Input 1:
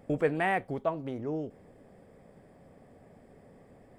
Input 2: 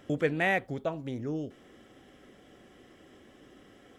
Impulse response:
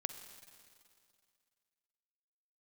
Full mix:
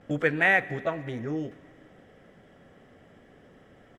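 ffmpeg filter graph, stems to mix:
-filter_complex "[0:a]lowpass=4.7k,acompressor=threshold=-35dB:ratio=6,volume=-0.5dB,asplit=2[a][b];[1:a]equalizer=f=1.6k:w=1.2:g=9.5,volume=-1,adelay=11,volume=-4dB,asplit=2[c][d];[d]volume=-3.5dB[e];[b]apad=whole_len=176046[f];[c][f]sidechaingate=range=-33dB:threshold=-46dB:ratio=16:detection=peak[g];[2:a]atrim=start_sample=2205[h];[e][h]afir=irnorm=-1:irlink=0[i];[a][g][i]amix=inputs=3:normalize=0"

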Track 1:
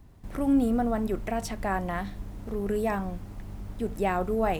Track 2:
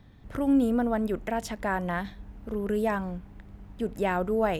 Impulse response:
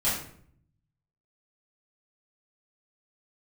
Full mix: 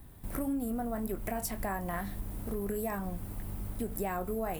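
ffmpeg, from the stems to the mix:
-filter_complex "[0:a]volume=0.5dB[a];[1:a]highpass=600,flanger=delay=18.5:depth=7.4:speed=1.7,volume=-3dB[b];[a][b]amix=inputs=2:normalize=0,aexciter=amount=6.5:drive=2.2:freq=8.5k,acompressor=threshold=-31dB:ratio=6"

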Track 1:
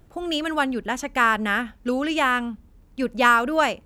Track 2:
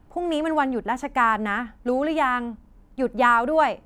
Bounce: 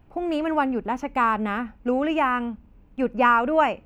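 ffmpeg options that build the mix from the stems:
-filter_complex "[0:a]volume=-7dB[a];[1:a]equalizer=f=2.6k:t=o:w=0.61:g=12.5,volume=-3dB[b];[a][b]amix=inputs=2:normalize=0,equalizer=f=9.5k:w=0.4:g=-11"

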